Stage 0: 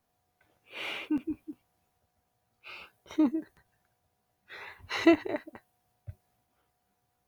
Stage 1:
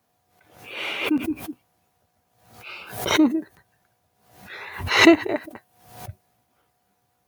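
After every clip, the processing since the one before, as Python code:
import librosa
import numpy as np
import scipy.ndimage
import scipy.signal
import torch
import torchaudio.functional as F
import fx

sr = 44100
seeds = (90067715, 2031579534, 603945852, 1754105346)

y = scipy.signal.sosfilt(scipy.signal.butter(2, 83.0, 'highpass', fs=sr, output='sos'), x)
y = fx.pre_swell(y, sr, db_per_s=84.0)
y = F.gain(torch.from_numpy(y), 7.5).numpy()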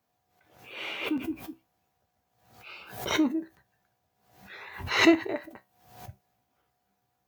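y = fx.peak_eq(x, sr, hz=10000.0, db=-7.5, octaves=0.33)
y = fx.comb_fb(y, sr, f0_hz=65.0, decay_s=0.21, harmonics='all', damping=0.0, mix_pct=60)
y = F.gain(torch.from_numpy(y), -3.5).numpy()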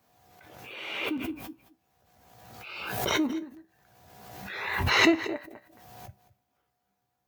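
y = x + 10.0 ** (-17.5 / 20.0) * np.pad(x, (int(220 * sr / 1000.0), 0))[:len(x)]
y = fx.pre_swell(y, sr, db_per_s=37.0)
y = F.gain(torch.from_numpy(y), -3.0).numpy()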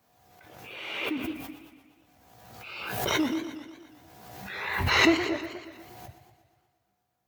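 y = fx.echo_warbled(x, sr, ms=120, feedback_pct=61, rate_hz=2.8, cents=144, wet_db=-12.0)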